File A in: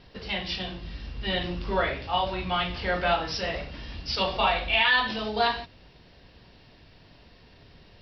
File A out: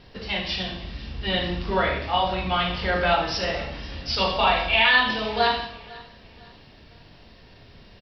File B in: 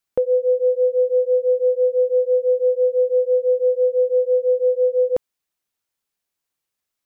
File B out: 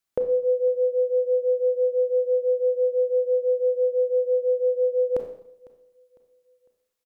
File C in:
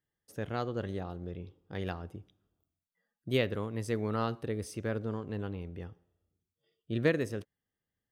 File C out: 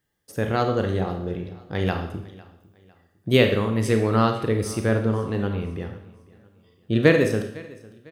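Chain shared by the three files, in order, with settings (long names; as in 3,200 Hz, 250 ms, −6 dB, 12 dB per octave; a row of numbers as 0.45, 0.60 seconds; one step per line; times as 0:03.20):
four-comb reverb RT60 0.68 s, combs from 28 ms, DRR 5 dB
dynamic equaliser 530 Hz, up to −6 dB, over −27 dBFS, Q 3.6
repeating echo 503 ms, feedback 37%, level −22 dB
loudness normalisation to −23 LKFS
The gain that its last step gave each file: +2.5, −2.5, +11.0 decibels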